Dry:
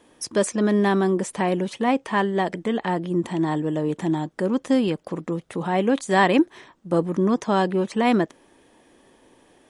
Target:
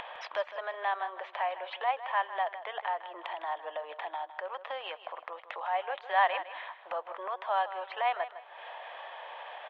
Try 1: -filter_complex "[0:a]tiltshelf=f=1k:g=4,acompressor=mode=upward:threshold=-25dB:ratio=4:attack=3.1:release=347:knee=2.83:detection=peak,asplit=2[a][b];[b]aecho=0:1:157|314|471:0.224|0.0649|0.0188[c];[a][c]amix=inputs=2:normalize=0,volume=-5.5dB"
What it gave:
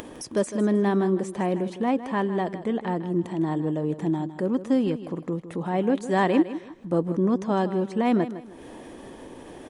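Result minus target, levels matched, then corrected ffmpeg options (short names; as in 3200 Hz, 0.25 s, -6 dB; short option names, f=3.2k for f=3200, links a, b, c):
2000 Hz band -10.0 dB
-filter_complex "[0:a]asuperpass=centerf=1500:order=12:qfactor=0.52,tiltshelf=f=1k:g=4,acompressor=mode=upward:threshold=-25dB:ratio=4:attack=3.1:release=347:knee=2.83:detection=peak,asplit=2[a][b];[b]aecho=0:1:157|314|471:0.224|0.0649|0.0188[c];[a][c]amix=inputs=2:normalize=0,volume=-5.5dB"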